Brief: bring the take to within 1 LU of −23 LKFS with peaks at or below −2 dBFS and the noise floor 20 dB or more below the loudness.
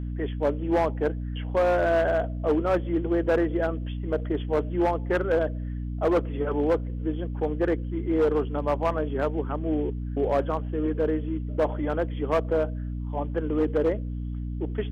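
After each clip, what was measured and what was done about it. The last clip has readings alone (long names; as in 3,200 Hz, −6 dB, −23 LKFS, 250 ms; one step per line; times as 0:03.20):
share of clipped samples 1.5%; peaks flattened at −17.0 dBFS; mains hum 60 Hz; hum harmonics up to 300 Hz; level of the hum −29 dBFS; integrated loudness −26.5 LKFS; sample peak −17.0 dBFS; target loudness −23.0 LKFS
→ clipped peaks rebuilt −17 dBFS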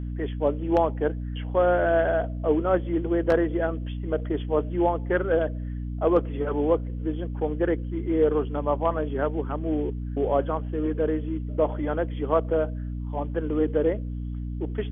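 share of clipped samples 0.0%; mains hum 60 Hz; hum harmonics up to 300 Hz; level of the hum −29 dBFS
→ hum removal 60 Hz, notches 5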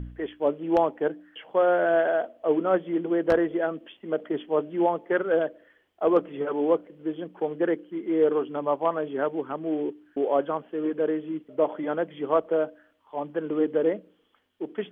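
mains hum none found; integrated loudness −26.5 LKFS; sample peak −7.5 dBFS; target loudness −23.0 LKFS
→ level +3.5 dB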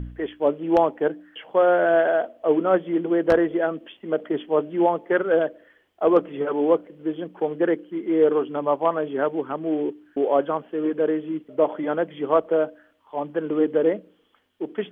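integrated loudness −23.0 LKFS; sample peak −4.0 dBFS; background noise floor −62 dBFS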